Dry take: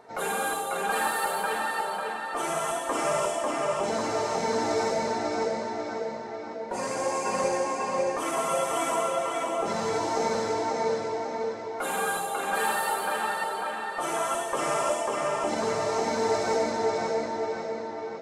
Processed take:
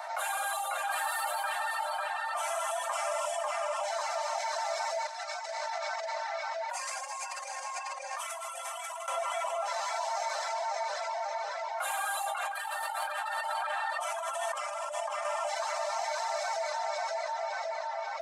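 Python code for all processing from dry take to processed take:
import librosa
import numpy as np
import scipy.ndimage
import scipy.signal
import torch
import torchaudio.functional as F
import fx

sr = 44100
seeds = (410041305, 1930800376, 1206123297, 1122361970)

y = fx.chain(x, sr, fx.highpass(hz=1200.0, slope=6),
    fx.over_compress(threshold_db=-40.0, ratio=-0.5), at=(5.07, 9.08))
y = fx.chain(y, sr, fx.over_compress(threshold_db=-32.0, ratio=-0.5),
    fx.high_shelf(hz=11000.0, db=-7.5), at=(12.26, 15.25))
y = fx.dereverb_blind(y, sr, rt60_s=0.66)
y = scipy.signal.sosfilt(scipy.signal.butter(16, 590.0, 'highpass', fs=sr, output='sos'), y)
y = fx.env_flatten(y, sr, amount_pct=70)
y = F.gain(torch.from_numpy(y), -5.5).numpy()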